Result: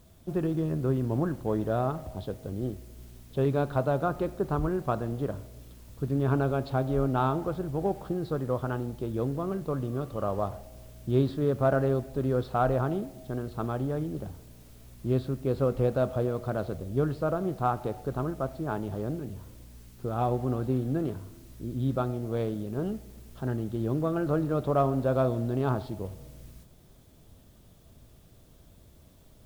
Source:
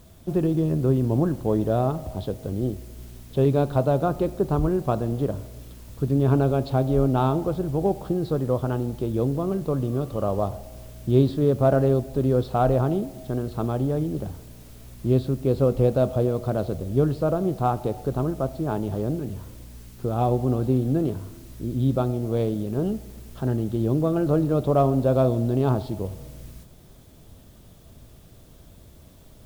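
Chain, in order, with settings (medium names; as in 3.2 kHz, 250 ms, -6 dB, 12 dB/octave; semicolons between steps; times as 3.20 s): dynamic bell 1.5 kHz, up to +8 dB, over -43 dBFS, Q 1.1; trim -6.5 dB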